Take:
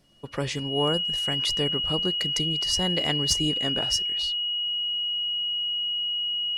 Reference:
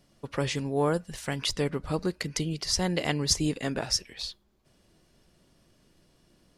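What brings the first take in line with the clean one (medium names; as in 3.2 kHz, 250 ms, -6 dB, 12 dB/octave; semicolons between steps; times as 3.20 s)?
clip repair -13 dBFS; band-stop 2.9 kHz, Q 30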